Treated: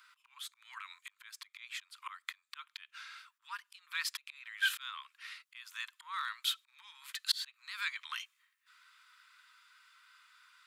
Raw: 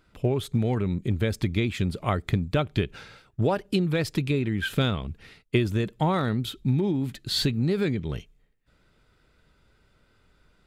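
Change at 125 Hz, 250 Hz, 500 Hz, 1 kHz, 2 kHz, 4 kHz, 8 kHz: below −40 dB, below −40 dB, below −40 dB, −12.5 dB, −3.5 dB, −4.5 dB, −3.0 dB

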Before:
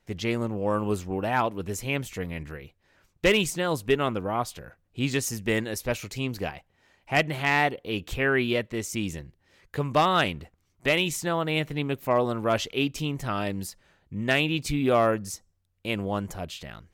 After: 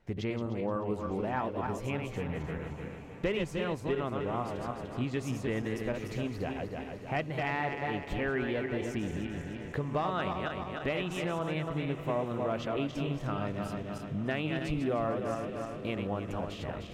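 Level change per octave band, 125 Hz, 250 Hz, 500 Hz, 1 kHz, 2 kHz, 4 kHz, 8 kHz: −4.0, −4.5, −6.0, −7.0, −10.0, −12.5, −17.0 decibels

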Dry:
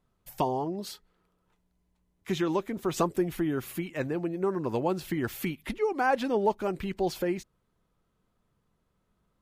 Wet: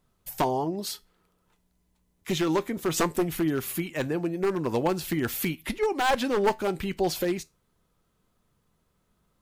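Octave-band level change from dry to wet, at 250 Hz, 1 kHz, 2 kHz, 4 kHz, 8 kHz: +2.5, +2.0, +3.5, +7.5, +8.5 decibels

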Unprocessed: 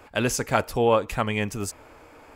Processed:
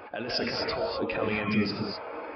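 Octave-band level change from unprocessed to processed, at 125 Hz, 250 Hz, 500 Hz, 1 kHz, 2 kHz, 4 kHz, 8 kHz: −7.0 dB, −1.0 dB, −6.0 dB, −8.0 dB, −3.0 dB, +2.0 dB, below −20 dB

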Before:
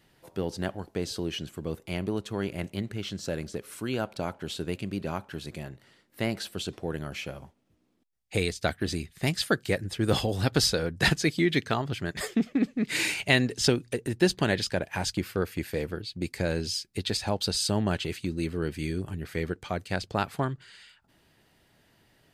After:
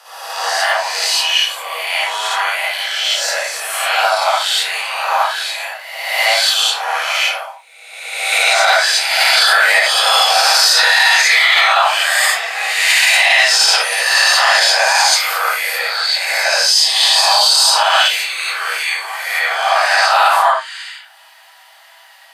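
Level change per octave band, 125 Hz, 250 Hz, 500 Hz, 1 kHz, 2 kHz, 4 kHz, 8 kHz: below −40 dB, below −30 dB, +8.5 dB, +23.0 dB, +21.0 dB, +21.5 dB, +19.5 dB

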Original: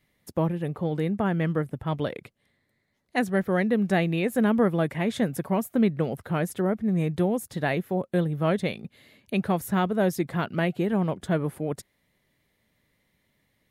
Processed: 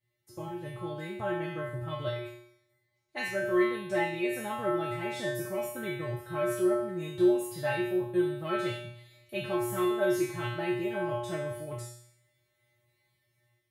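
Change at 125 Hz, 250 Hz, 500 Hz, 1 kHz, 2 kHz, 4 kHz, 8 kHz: −11.0, −7.5, −2.5, −4.5, −3.0, −2.5, −1.5 decibels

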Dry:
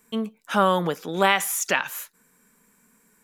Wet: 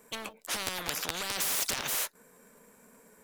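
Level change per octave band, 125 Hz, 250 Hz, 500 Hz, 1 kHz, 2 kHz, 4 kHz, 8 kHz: −16.0, −18.0, −17.5, −16.0, −10.5, −2.5, −2.0 decibels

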